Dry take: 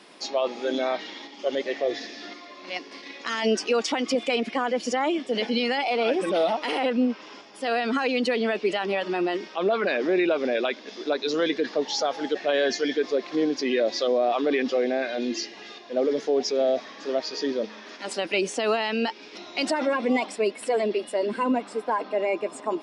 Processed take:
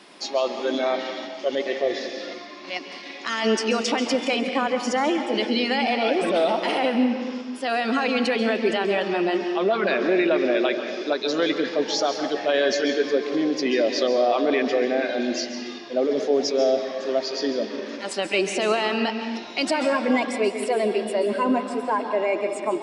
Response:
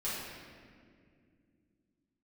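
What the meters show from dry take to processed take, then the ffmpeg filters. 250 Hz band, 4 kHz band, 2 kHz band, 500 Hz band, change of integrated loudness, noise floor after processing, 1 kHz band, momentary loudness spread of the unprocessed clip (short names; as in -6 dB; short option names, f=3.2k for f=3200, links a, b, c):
+3.0 dB, +3.0 dB, +3.0 dB, +2.5 dB, +2.5 dB, -38 dBFS, +3.0 dB, 9 LU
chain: -filter_complex "[0:a]bandreject=f=470:w=15,asplit=2[a][b];[1:a]atrim=start_sample=2205,afade=t=out:st=0.44:d=0.01,atrim=end_sample=19845,adelay=133[c];[b][c]afir=irnorm=-1:irlink=0,volume=-11dB[d];[a][d]amix=inputs=2:normalize=0,volume=2dB"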